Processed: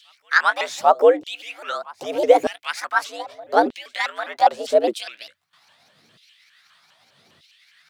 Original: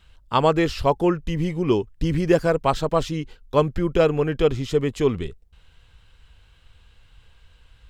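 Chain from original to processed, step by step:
pitch shifter swept by a sawtooth +7 semitones, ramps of 203 ms
in parallel at −0.5 dB: downward compressor, threshold −29 dBFS, peak gain reduction 15.5 dB
on the sum: frequency shifter +89 Hz
backwards echo 798 ms −22.5 dB
auto-filter high-pass saw down 0.81 Hz 340–3,300 Hz
level −1.5 dB

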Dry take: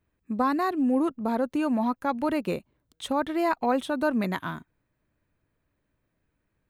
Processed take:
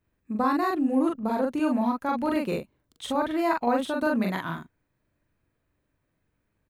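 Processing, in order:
double-tracking delay 42 ms −2 dB
level −1.5 dB

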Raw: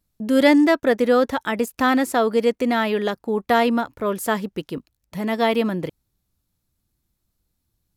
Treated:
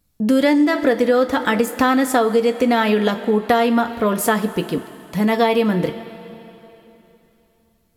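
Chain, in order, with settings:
on a send at −6 dB: convolution reverb, pre-delay 3 ms
on the sum: downward compressor 6 to 1, threshold −19 dBFS, peak gain reduction 10 dB
level +6.5 dB

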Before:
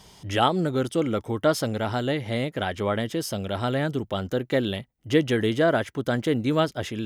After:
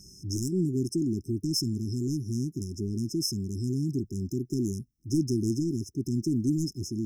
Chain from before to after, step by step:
flat-topped bell 3,400 Hz +9.5 dB
soft clipping −16 dBFS, distortion −13 dB
linear-phase brick-wall band-stop 400–5,100 Hz

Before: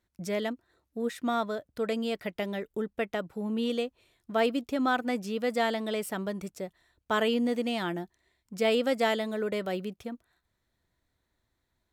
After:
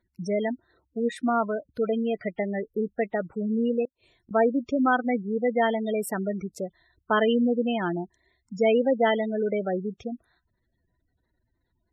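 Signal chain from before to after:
gate on every frequency bin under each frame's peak −15 dB strong
0:03.85–0:04.31: gate with flip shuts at −44 dBFS, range −28 dB
level +5 dB

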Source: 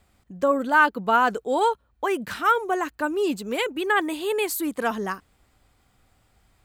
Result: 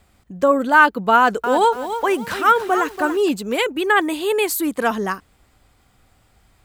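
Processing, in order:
0:01.15–0:03.29: feedback echo at a low word length 286 ms, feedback 35%, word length 7 bits, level −9.5 dB
level +5.5 dB

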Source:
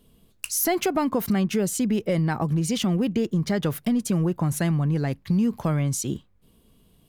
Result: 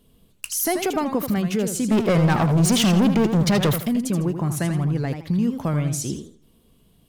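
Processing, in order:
0:01.91–0:03.76: leveller curve on the samples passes 3
feedback echo with a swinging delay time 81 ms, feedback 32%, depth 187 cents, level −8 dB

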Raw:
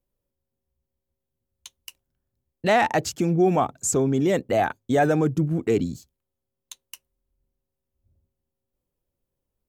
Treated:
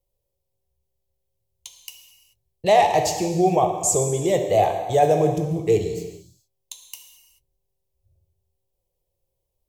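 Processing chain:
phaser with its sweep stopped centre 600 Hz, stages 4
reverb whose tail is shaped and stops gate 460 ms falling, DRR 3.5 dB
level +4 dB

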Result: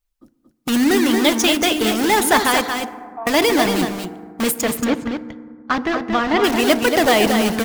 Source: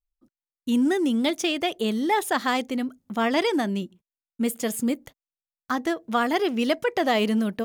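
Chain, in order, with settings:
in parallel at −3.5 dB: wrap-around overflow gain 25.5 dB
0:02.66–0:03.27: on the sum: formant resonators in series a
0:04.61–0:06.44: high-frequency loss of the air 200 metres
on a send: single-tap delay 230 ms −6 dB
on the sum: feedback delay network reverb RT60 1.9 s, low-frequency decay 1.35×, high-frequency decay 0.35×, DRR 11 dB
harmonic and percussive parts rebalanced percussive +6 dB
level +3.5 dB

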